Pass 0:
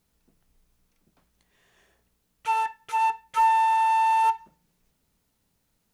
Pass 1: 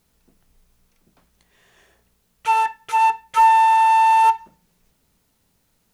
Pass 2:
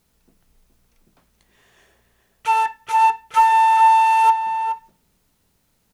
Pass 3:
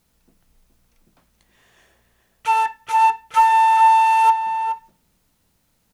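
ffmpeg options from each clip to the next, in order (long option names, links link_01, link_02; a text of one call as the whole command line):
ffmpeg -i in.wav -af "bandreject=frequency=50:width_type=h:width=6,bandreject=frequency=100:width_type=h:width=6,bandreject=frequency=150:width_type=h:width=6,bandreject=frequency=200:width_type=h:width=6,bandreject=frequency=250:width_type=h:width=6,bandreject=frequency=300:width_type=h:width=6,volume=7dB" out.wav
ffmpeg -i in.wav -filter_complex "[0:a]asplit=2[link_01][link_02];[link_02]adelay=419.8,volume=-8dB,highshelf=frequency=4000:gain=-9.45[link_03];[link_01][link_03]amix=inputs=2:normalize=0" out.wav
ffmpeg -i in.wav -af "bandreject=frequency=410:width=12" out.wav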